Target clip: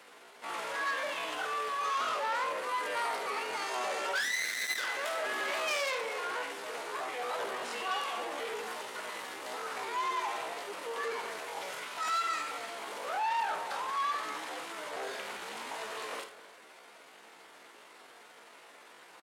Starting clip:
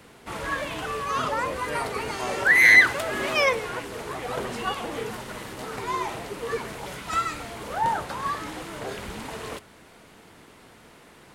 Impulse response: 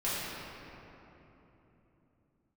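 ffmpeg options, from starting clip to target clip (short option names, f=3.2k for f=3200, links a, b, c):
-filter_complex "[0:a]aeval=exprs='0.562*(cos(1*acos(clip(val(0)/0.562,-1,1)))-cos(1*PI/2))+0.2*(cos(2*acos(clip(val(0)/0.562,-1,1)))-cos(2*PI/2))+0.00891*(cos(3*acos(clip(val(0)/0.562,-1,1)))-cos(3*PI/2))+0.0891*(cos(6*acos(clip(val(0)/0.562,-1,1)))-cos(6*PI/2))+0.01*(cos(8*acos(clip(val(0)/0.562,-1,1)))-cos(8*PI/2))':c=same,highshelf=f=10k:g=-6,volume=12.5dB,asoftclip=hard,volume=-12.5dB,asplit=2[a][b];[b]adelay=152,lowpass=f=1.1k:p=1,volume=-15dB,asplit=2[c][d];[d]adelay=152,lowpass=f=1.1k:p=1,volume=0.17[e];[a][c][e]amix=inputs=3:normalize=0,asplit=2[f][g];[1:a]atrim=start_sample=2205,afade=t=out:st=0.34:d=0.01,atrim=end_sample=15435[h];[g][h]afir=irnorm=-1:irlink=0,volume=-32dB[i];[f][i]amix=inputs=2:normalize=0,atempo=0.59,acontrast=90,asplit=2[j][k];[k]aecho=0:1:53|79:0.282|0.224[l];[j][l]amix=inputs=2:normalize=0,asoftclip=type=tanh:threshold=-18dB,highpass=550,volume=-8dB"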